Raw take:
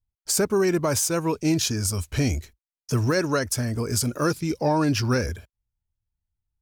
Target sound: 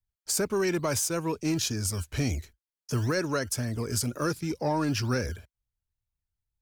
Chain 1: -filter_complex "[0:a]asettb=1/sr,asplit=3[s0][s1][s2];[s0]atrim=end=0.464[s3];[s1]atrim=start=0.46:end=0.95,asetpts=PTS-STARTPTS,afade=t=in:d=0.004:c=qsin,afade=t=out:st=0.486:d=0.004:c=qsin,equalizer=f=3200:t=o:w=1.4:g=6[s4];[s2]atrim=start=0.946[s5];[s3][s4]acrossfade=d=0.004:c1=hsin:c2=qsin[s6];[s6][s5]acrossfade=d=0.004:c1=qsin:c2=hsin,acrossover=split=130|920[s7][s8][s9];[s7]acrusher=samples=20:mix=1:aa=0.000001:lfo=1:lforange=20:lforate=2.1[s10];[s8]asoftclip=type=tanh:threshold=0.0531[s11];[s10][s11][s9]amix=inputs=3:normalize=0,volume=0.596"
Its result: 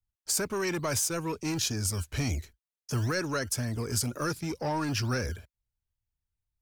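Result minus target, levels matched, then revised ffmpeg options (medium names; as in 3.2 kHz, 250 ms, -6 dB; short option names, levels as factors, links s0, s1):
saturation: distortion +11 dB
-filter_complex "[0:a]asettb=1/sr,asplit=3[s0][s1][s2];[s0]atrim=end=0.464[s3];[s1]atrim=start=0.46:end=0.95,asetpts=PTS-STARTPTS,afade=t=in:d=0.004:c=qsin,afade=t=out:st=0.486:d=0.004:c=qsin,equalizer=f=3200:t=o:w=1.4:g=6[s4];[s2]atrim=start=0.946[s5];[s3][s4]acrossfade=d=0.004:c1=hsin:c2=qsin[s6];[s6][s5]acrossfade=d=0.004:c1=qsin:c2=hsin,acrossover=split=130|920[s7][s8][s9];[s7]acrusher=samples=20:mix=1:aa=0.000001:lfo=1:lforange=20:lforate=2.1[s10];[s8]asoftclip=type=tanh:threshold=0.158[s11];[s10][s11][s9]amix=inputs=3:normalize=0,volume=0.596"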